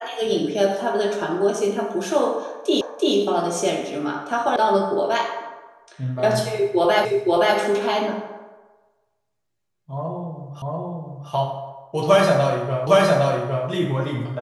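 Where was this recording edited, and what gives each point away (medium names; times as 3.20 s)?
2.81 s: repeat of the last 0.34 s
4.56 s: sound stops dead
7.05 s: repeat of the last 0.52 s
10.62 s: repeat of the last 0.69 s
12.87 s: repeat of the last 0.81 s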